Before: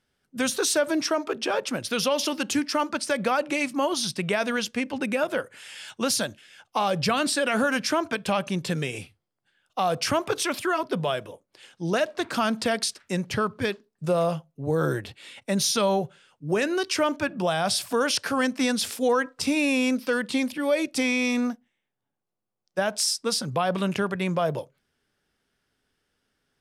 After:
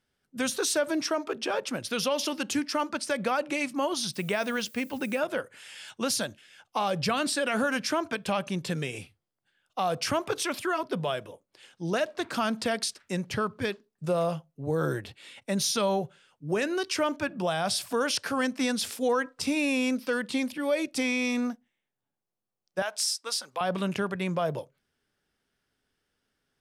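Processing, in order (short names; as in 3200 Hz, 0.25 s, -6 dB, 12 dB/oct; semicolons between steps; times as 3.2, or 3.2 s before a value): 4.13–5.18 added noise violet -50 dBFS; 22.82–23.61 HPF 740 Hz 12 dB/oct; gain -3.5 dB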